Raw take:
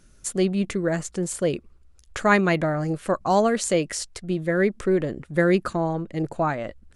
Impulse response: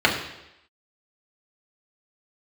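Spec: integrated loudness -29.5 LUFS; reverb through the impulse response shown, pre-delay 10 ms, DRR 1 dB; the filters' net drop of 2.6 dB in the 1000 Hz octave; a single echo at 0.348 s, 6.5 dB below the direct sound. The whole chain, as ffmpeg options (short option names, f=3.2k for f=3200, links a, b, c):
-filter_complex "[0:a]equalizer=f=1k:t=o:g=-3.5,aecho=1:1:348:0.473,asplit=2[a][b];[1:a]atrim=start_sample=2205,adelay=10[c];[b][c]afir=irnorm=-1:irlink=0,volume=-21dB[d];[a][d]amix=inputs=2:normalize=0,volume=-8dB"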